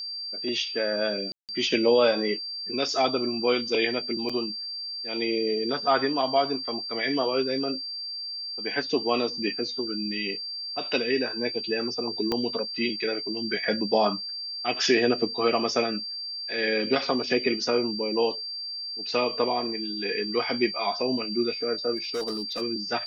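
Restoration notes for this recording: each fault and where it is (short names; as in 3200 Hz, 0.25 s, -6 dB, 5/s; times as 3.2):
tone 4700 Hz -32 dBFS
1.32–1.49 gap 0.168 s
4.29–4.3 gap 5.4 ms
12.32 pop -13 dBFS
21.96–22.62 clipped -26 dBFS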